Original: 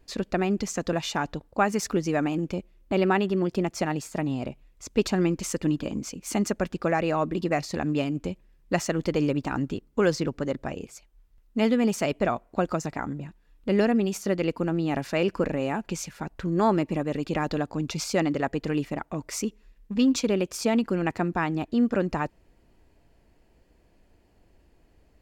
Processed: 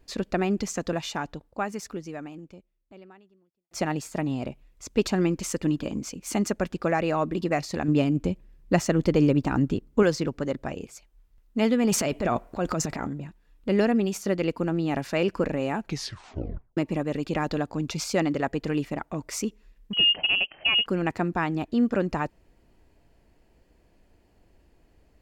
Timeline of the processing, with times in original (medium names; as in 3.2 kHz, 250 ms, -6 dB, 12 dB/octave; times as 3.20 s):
0.66–3.71 s: fade out quadratic
7.88–10.03 s: bass shelf 450 Hz +6.5 dB
11.85–13.13 s: transient shaper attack -6 dB, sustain +10 dB
15.82 s: tape stop 0.95 s
19.93–20.86 s: frequency inversion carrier 3.1 kHz